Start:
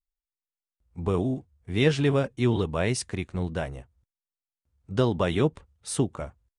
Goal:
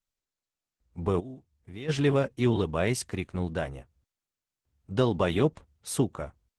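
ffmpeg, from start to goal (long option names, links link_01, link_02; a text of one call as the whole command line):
ffmpeg -i in.wav -filter_complex "[0:a]lowshelf=frequency=110:gain=-3.5,asplit=3[link_01][link_02][link_03];[link_01]afade=type=out:start_time=1.19:duration=0.02[link_04];[link_02]acompressor=threshold=-50dB:ratio=2,afade=type=in:start_time=1.19:duration=0.02,afade=type=out:start_time=1.88:duration=0.02[link_05];[link_03]afade=type=in:start_time=1.88:duration=0.02[link_06];[link_04][link_05][link_06]amix=inputs=3:normalize=0" -ar 48000 -c:a libopus -b:a 16k out.opus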